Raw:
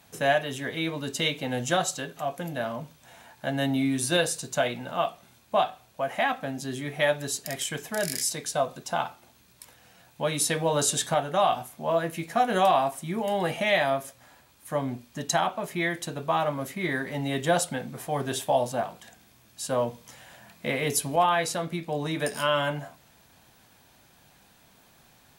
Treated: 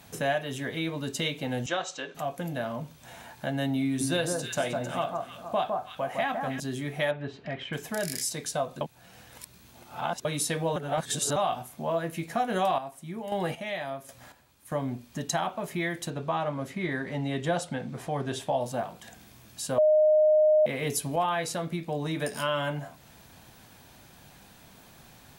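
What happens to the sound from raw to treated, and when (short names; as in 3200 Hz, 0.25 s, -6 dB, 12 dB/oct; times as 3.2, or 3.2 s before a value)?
1.66–2.15 speaker cabinet 370–6100 Hz, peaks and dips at 690 Hz -4 dB, 2500 Hz +3 dB, 4600 Hz -5 dB
3.85–6.6 echo with dull and thin repeats by turns 0.156 s, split 1400 Hz, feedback 50%, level -4 dB
7.11–7.73 LPF 2900 Hz 24 dB/oct
8.81–10.25 reverse
10.76–11.36 reverse
12.55–14.72 chopper 1.3 Hz, depth 65%, duty 30%
16.1–18.61 air absorption 52 m
19.78–20.66 bleep 615 Hz -10.5 dBFS
whole clip: low shelf 330 Hz +4 dB; compressor 1.5:1, threshold -45 dBFS; gain +4 dB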